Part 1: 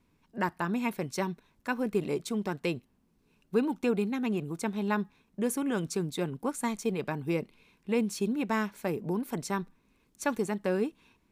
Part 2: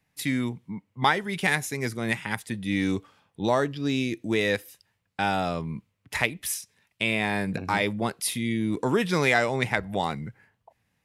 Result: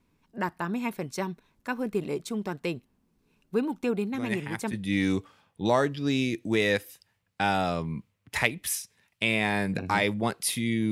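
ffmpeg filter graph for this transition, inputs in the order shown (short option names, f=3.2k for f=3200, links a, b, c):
-filter_complex "[1:a]asplit=2[a][b];[0:a]apad=whole_dur=10.91,atrim=end=10.91,atrim=end=4.732[c];[b]atrim=start=2.518:end=8.7[d];[a]atrim=start=1.93:end=2.52,asetpts=PTS-STARTPTS,volume=-6.5dB,afade=t=in:d=0.004:c=hsin,afade=t=out:st=0.586:d=0.004:c=hsin,adelay=4140[e];[c][d]acrossfade=d=0.004:c1=hsin:c2=hsin[f];[f][e]amix=inputs=2:normalize=0"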